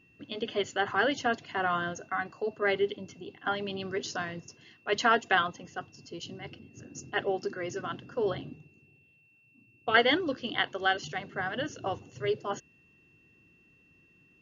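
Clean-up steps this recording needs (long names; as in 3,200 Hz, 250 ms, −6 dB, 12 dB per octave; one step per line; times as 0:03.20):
notch filter 2,700 Hz, Q 30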